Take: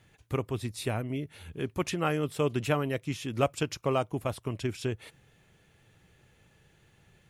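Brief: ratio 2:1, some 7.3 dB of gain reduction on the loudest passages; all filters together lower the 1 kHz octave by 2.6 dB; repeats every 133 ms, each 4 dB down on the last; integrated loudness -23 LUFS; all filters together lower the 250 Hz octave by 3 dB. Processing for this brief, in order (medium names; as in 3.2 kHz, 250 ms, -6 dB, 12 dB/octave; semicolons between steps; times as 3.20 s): peaking EQ 250 Hz -4 dB; peaking EQ 1 kHz -3.5 dB; compression 2:1, threshold -37 dBFS; feedback delay 133 ms, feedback 63%, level -4 dB; trim +14 dB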